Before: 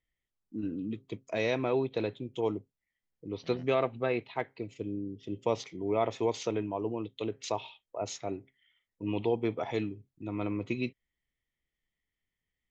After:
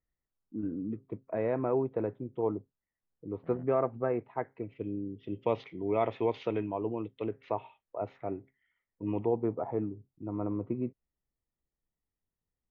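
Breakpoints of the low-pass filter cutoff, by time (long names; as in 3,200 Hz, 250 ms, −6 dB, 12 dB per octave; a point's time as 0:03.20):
low-pass filter 24 dB per octave
0:04.38 1,500 Hz
0:04.95 3,000 Hz
0:06.59 3,000 Hz
0:07.62 1,900 Hz
0:09.11 1,900 Hz
0:09.56 1,200 Hz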